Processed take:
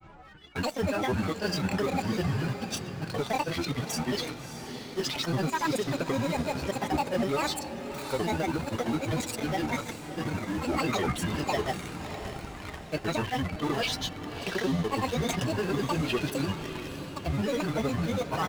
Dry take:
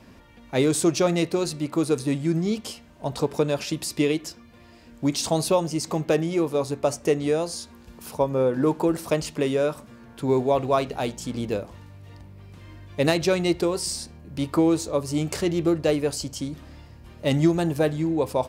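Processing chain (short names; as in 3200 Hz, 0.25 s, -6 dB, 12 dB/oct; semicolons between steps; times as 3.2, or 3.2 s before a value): treble ducked by the level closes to 1700 Hz, closed at -17 dBFS; comb 6.8 ms, depth 40%; reverse; compressor 5:1, threshold -30 dBFS, peak gain reduction 15.5 dB; reverse; grains 0.1 s, grains 20/s, spray 27 ms, pitch spread up and down by 0 st; in parallel at -8 dB: companded quantiser 2-bit; on the sum: small resonant body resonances 1400/2300/4000 Hz, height 17 dB; grains, pitch spread up and down by 12 st; diffused feedback echo 0.631 s, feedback 48%, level -9.5 dB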